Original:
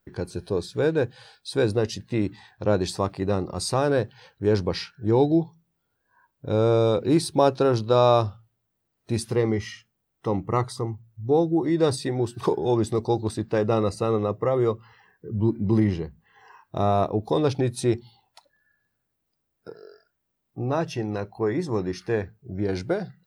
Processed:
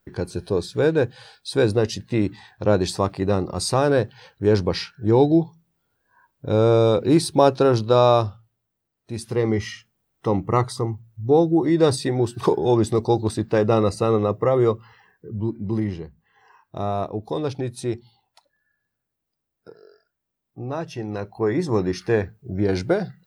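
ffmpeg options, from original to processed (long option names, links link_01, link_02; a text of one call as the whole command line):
ffmpeg -i in.wav -af "volume=21.5dB,afade=type=out:start_time=7.8:duration=1.33:silence=0.354813,afade=type=in:start_time=9.13:duration=0.49:silence=0.334965,afade=type=out:start_time=14.71:duration=0.78:silence=0.421697,afade=type=in:start_time=20.89:duration=0.87:silence=0.375837" out.wav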